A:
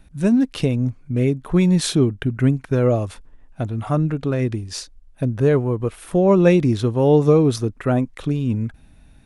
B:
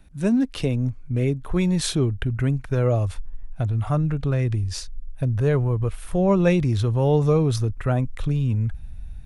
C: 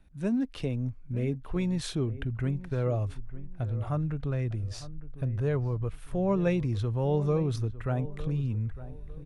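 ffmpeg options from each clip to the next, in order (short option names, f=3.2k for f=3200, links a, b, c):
-filter_complex "[0:a]asubboost=boost=9:cutoff=95,acrossover=split=260|1400[a][b][c];[a]alimiter=limit=-16dB:level=0:latency=1[d];[d][b][c]amix=inputs=3:normalize=0,volume=-2.5dB"
-filter_complex "[0:a]highshelf=f=5.4k:g=-7.5,asplit=2[a][b];[b]adelay=905,lowpass=f=1.5k:p=1,volume=-15dB,asplit=2[c][d];[d]adelay=905,lowpass=f=1.5k:p=1,volume=0.31,asplit=2[e][f];[f]adelay=905,lowpass=f=1.5k:p=1,volume=0.31[g];[a][c][e][g]amix=inputs=4:normalize=0,volume=-8dB"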